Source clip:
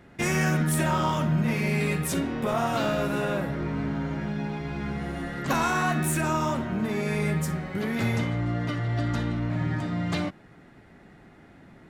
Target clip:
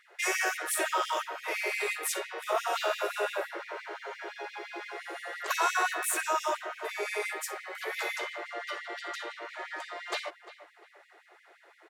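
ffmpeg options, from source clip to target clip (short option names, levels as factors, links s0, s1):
-filter_complex "[0:a]asplit=2[s0][s1];[s1]adelay=349,lowpass=f=2500:p=1,volume=0.188,asplit=2[s2][s3];[s3]adelay=349,lowpass=f=2500:p=1,volume=0.37,asplit=2[s4][s5];[s5]adelay=349,lowpass=f=2500:p=1,volume=0.37[s6];[s2][s4][s6]amix=inputs=3:normalize=0[s7];[s0][s7]amix=inputs=2:normalize=0,afftfilt=real='re*gte(b*sr/1024,310*pow(1900/310,0.5+0.5*sin(2*PI*5.8*pts/sr)))':imag='im*gte(b*sr/1024,310*pow(1900/310,0.5+0.5*sin(2*PI*5.8*pts/sr)))':win_size=1024:overlap=0.75"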